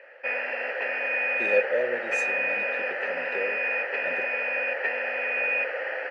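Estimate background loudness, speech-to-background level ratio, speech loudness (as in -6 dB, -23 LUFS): -26.5 LUFS, -5.0 dB, -31.5 LUFS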